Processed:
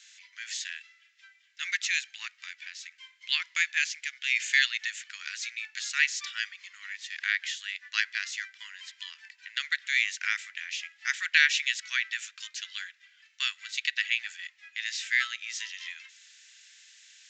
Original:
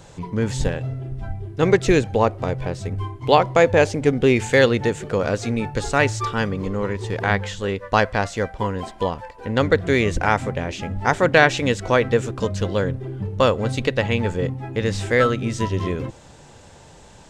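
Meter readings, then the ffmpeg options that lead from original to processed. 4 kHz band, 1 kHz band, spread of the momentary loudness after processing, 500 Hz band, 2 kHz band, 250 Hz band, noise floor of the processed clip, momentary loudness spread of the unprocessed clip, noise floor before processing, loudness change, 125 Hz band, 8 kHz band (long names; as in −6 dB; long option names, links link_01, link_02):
0.0 dB, −25.5 dB, 18 LU, below −40 dB, −3.0 dB, below −40 dB, −63 dBFS, 11 LU, −46 dBFS, −8.5 dB, below −40 dB, −1.5 dB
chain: -af "asuperpass=centerf=4500:order=12:qfactor=0.54,aresample=16000,aresample=44100"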